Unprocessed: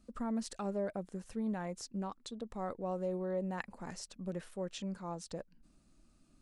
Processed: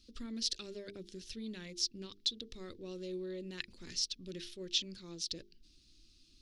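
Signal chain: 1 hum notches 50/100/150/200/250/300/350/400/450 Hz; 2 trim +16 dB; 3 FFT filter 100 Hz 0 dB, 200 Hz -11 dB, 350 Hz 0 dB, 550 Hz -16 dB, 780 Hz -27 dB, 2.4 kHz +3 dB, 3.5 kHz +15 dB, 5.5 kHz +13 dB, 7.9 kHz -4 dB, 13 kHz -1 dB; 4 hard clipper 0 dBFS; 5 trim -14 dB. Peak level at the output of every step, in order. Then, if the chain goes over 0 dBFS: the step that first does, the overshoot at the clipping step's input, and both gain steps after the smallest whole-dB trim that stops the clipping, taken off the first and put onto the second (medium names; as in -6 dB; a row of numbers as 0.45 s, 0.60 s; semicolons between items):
-21.5 dBFS, -5.5 dBFS, -2.0 dBFS, -2.0 dBFS, -16.0 dBFS; nothing clips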